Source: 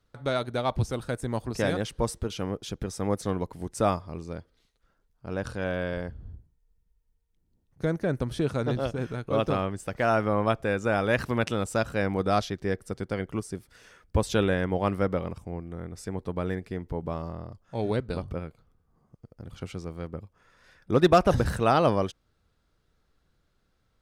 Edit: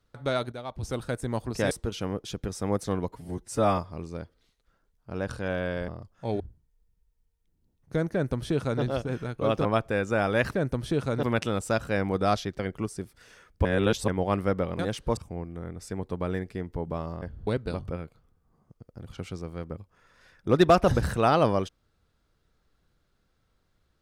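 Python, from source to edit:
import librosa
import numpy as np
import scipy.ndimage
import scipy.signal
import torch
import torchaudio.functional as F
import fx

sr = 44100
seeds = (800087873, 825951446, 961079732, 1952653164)

y = fx.edit(x, sr, fx.clip_gain(start_s=0.52, length_s=0.31, db=-10.0),
    fx.move(start_s=1.71, length_s=0.38, to_s=15.33),
    fx.stretch_span(start_s=3.5, length_s=0.44, factor=1.5),
    fx.swap(start_s=6.04, length_s=0.25, other_s=17.38, other_length_s=0.52),
    fx.duplicate(start_s=8.02, length_s=0.69, to_s=11.28),
    fx.cut(start_s=9.54, length_s=0.85),
    fx.cut(start_s=12.64, length_s=0.49),
    fx.reverse_span(start_s=14.19, length_s=0.43), tone=tone)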